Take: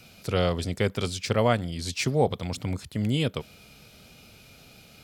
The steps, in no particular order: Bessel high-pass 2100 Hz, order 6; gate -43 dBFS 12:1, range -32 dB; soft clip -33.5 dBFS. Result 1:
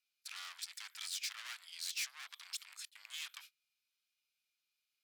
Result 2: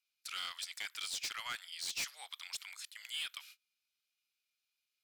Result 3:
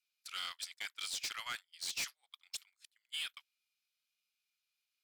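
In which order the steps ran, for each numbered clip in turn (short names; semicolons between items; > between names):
soft clip > gate > Bessel high-pass; gate > Bessel high-pass > soft clip; Bessel high-pass > soft clip > gate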